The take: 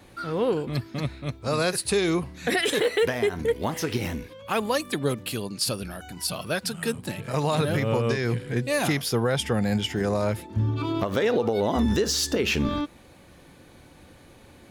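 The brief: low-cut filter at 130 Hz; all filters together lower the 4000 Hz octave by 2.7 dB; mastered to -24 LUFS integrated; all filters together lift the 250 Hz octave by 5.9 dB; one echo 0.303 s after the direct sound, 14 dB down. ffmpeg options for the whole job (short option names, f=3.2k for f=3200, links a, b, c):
-af "highpass=130,equalizer=f=250:t=o:g=8,equalizer=f=4k:t=o:g=-3.5,aecho=1:1:303:0.2,volume=-0.5dB"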